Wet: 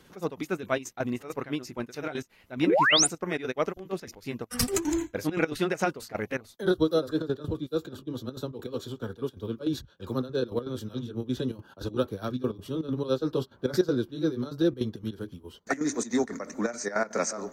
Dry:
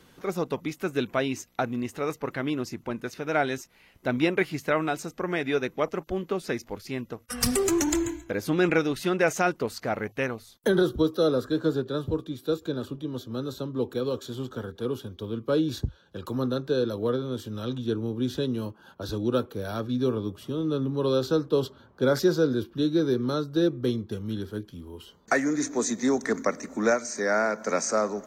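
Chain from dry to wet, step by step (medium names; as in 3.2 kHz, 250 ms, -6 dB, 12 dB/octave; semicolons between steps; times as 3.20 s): trance gate "xx.x.xxx." 130 bpm -12 dB; painted sound rise, 4.31–4.96 s, 270–10000 Hz -20 dBFS; granular stretch 0.62×, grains 134 ms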